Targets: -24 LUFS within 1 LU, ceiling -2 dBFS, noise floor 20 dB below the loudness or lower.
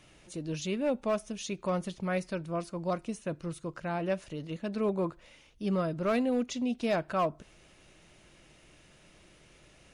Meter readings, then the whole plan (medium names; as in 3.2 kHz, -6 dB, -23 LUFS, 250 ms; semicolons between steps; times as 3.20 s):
clipped samples 0.5%; clipping level -22.0 dBFS; loudness -33.0 LUFS; peak level -22.0 dBFS; loudness target -24.0 LUFS
-> clip repair -22 dBFS; trim +9 dB